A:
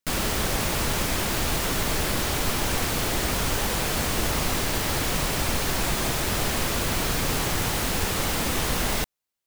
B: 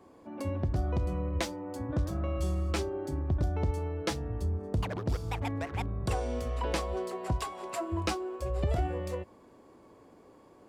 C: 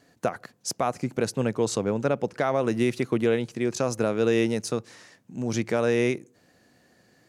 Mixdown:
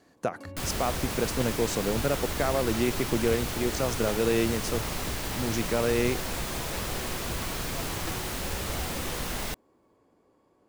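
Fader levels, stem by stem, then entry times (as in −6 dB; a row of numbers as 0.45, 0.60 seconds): −7.5, −9.0, −3.0 decibels; 0.50, 0.00, 0.00 seconds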